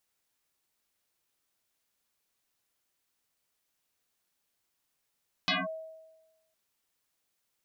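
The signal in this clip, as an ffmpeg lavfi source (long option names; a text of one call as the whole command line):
ffmpeg -f lavfi -i "aevalsrc='0.0708*pow(10,-3*t/1.14)*sin(2*PI*641*t+9.5*clip(1-t/0.19,0,1)*sin(2*PI*0.71*641*t))':duration=1.06:sample_rate=44100" out.wav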